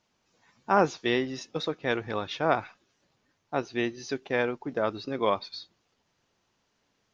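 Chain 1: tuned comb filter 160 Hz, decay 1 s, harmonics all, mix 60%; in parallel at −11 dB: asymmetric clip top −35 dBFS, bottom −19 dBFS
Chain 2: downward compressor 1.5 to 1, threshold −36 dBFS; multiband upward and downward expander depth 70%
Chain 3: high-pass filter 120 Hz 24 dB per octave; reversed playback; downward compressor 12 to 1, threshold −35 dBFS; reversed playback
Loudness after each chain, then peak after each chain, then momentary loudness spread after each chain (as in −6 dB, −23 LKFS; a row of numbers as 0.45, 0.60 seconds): −34.5, −33.5, −41.0 LKFS; −14.5, −13.5, −22.0 dBFS; 9, 10, 5 LU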